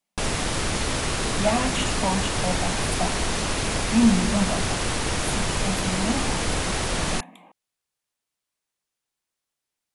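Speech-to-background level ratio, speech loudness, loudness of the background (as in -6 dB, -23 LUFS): -1.5 dB, -27.0 LUFS, -25.5 LUFS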